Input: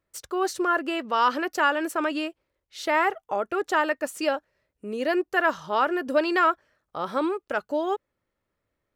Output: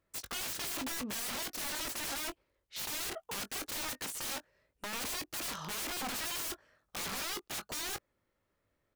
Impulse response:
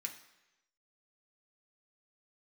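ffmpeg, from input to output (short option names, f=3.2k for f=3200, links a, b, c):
-filter_complex "[0:a]alimiter=limit=-16.5dB:level=0:latency=1:release=169,aeval=exprs='(mod(47.3*val(0)+1,2)-1)/47.3':c=same,asplit=2[a][b];[b]adelay=20,volume=-11dB[c];[a][c]amix=inputs=2:normalize=0"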